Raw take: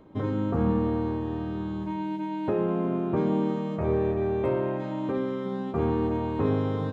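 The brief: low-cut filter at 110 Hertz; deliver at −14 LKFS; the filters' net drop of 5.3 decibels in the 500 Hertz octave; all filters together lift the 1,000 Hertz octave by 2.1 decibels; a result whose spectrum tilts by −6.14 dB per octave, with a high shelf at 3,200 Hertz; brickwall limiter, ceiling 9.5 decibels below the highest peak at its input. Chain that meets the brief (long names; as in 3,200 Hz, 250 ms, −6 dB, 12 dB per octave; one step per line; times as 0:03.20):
high-pass filter 110 Hz
parametric band 500 Hz −8 dB
parametric band 1,000 Hz +5.5 dB
high-shelf EQ 3,200 Hz −8 dB
level +19 dB
brickwall limiter −5.5 dBFS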